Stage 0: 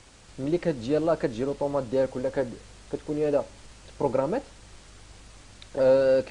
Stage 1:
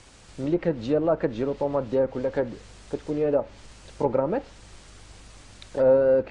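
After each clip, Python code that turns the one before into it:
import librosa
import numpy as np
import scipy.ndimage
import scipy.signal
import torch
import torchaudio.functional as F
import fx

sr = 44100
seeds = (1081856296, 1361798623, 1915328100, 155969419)

y = fx.env_lowpass_down(x, sr, base_hz=1400.0, full_db=-19.5)
y = y * 10.0 ** (1.5 / 20.0)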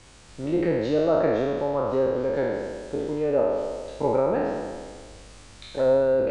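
y = fx.spec_trails(x, sr, decay_s=1.75)
y = y * 10.0 ** (-2.5 / 20.0)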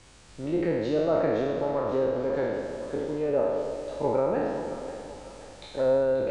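y = fx.echo_split(x, sr, split_hz=570.0, low_ms=332, high_ms=531, feedback_pct=52, wet_db=-11.5)
y = y * 10.0 ** (-3.0 / 20.0)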